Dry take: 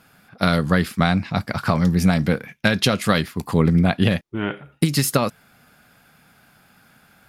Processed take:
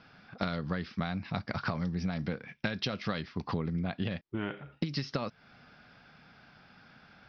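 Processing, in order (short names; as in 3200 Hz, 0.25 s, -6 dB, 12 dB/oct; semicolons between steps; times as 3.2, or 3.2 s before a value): steep low-pass 5700 Hz 96 dB/oct; compressor 6:1, threshold -28 dBFS, peak gain reduction 15.5 dB; gain -2.5 dB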